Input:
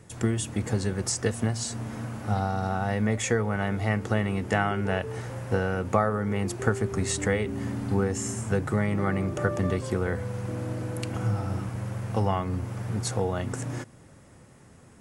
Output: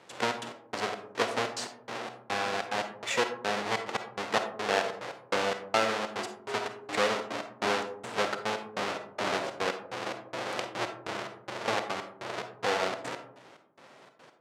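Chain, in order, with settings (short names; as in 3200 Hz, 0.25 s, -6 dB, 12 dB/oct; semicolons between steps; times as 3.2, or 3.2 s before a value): half-waves squared off; in parallel at -2.5 dB: vocal rider within 4 dB 0.5 s; on the sum: step gate "xxx.x..xx.." 138 bpm -60 dB; on a send at -7 dB: reverb RT60 0.75 s, pre-delay 10 ms; on the sum: speed mistake 24 fps film run at 25 fps; BPF 510–5300 Hz; gain -6 dB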